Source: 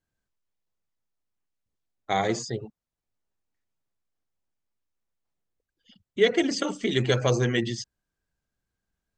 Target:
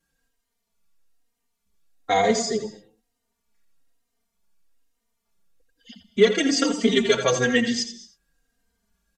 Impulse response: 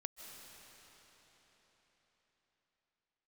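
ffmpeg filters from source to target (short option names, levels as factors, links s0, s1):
-filter_complex "[0:a]highshelf=f=5400:g=4.5,aecho=1:1:4.3:0.84,asplit=2[s0][s1];[s1]acompressor=threshold=0.02:ratio=6,volume=1.33[s2];[s0][s2]amix=inputs=2:normalize=0,asoftclip=type=tanh:threshold=0.596,aecho=1:1:84:0.299,asplit=2[s3][s4];[1:a]atrim=start_sample=2205,afade=t=out:st=0.3:d=0.01,atrim=end_sample=13671[s5];[s4][s5]afir=irnorm=-1:irlink=0,volume=1[s6];[s3][s6]amix=inputs=2:normalize=0,aresample=32000,aresample=44100,asplit=2[s7][s8];[s8]adelay=3.1,afreqshift=-1.1[s9];[s7][s9]amix=inputs=2:normalize=1,volume=0.891"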